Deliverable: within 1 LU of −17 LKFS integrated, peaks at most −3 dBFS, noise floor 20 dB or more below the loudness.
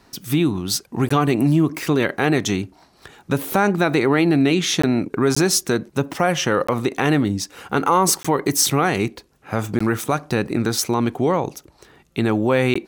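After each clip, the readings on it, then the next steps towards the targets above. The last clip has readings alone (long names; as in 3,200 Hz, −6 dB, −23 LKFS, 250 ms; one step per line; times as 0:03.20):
number of dropouts 7; longest dropout 15 ms; integrated loudness −20.0 LKFS; sample peak −4.5 dBFS; target loudness −17.0 LKFS
→ repair the gap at 0:01.09/0:04.82/0:05.35/0:06.67/0:08.23/0:09.79/0:12.74, 15 ms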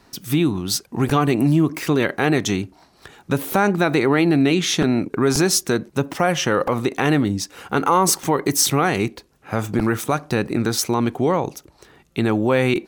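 number of dropouts 0; integrated loudness −20.0 LKFS; sample peak −4.5 dBFS; target loudness −17.0 LKFS
→ level +3 dB
brickwall limiter −3 dBFS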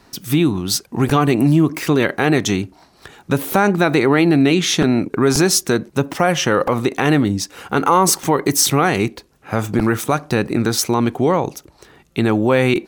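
integrated loudness −17.0 LKFS; sample peak −3.0 dBFS; background noise floor −53 dBFS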